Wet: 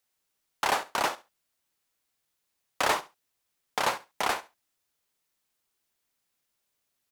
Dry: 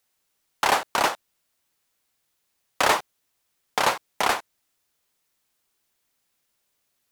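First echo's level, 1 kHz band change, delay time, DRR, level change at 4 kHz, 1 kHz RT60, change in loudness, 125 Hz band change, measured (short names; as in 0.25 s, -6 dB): -17.5 dB, -5.5 dB, 69 ms, none, -5.5 dB, none, -5.5 dB, -5.5 dB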